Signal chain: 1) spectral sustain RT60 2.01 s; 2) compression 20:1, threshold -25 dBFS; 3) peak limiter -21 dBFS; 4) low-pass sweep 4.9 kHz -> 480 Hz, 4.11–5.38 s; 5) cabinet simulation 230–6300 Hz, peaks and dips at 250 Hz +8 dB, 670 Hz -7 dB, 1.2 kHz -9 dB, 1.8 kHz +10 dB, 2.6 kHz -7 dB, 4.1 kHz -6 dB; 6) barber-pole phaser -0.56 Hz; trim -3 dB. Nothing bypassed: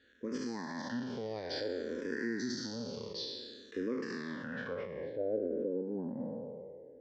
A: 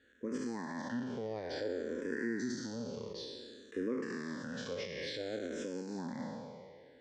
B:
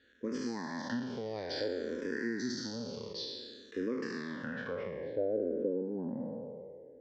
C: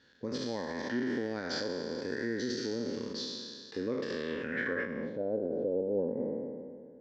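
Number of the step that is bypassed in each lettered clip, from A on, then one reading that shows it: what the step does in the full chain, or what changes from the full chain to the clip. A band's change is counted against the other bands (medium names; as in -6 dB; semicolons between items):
4, momentary loudness spread change +1 LU; 3, momentary loudness spread change +1 LU; 6, 2 kHz band +3.0 dB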